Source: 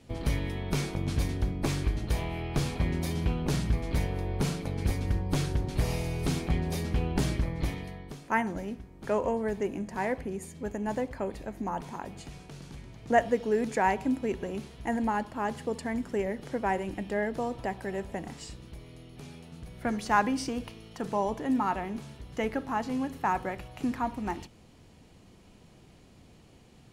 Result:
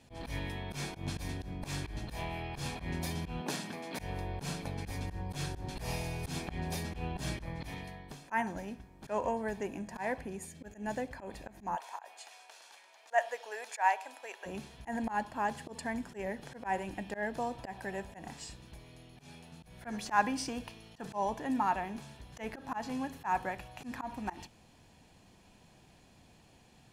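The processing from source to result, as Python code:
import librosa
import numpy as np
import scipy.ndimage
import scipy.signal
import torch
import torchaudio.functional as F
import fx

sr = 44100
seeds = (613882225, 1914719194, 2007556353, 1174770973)

y = fx.highpass(x, sr, hz=200.0, slope=24, at=(3.41, 3.99))
y = fx.peak_eq(y, sr, hz=970.0, db=-8.5, octaves=0.39, at=(10.46, 11.12))
y = fx.highpass(y, sr, hz=590.0, slope=24, at=(11.75, 14.45), fade=0.02)
y = fx.low_shelf(y, sr, hz=260.0, db=-8.0)
y = y + 0.34 * np.pad(y, (int(1.2 * sr / 1000.0), 0))[:len(y)]
y = fx.auto_swell(y, sr, attack_ms=105.0)
y = F.gain(torch.from_numpy(y), -1.5).numpy()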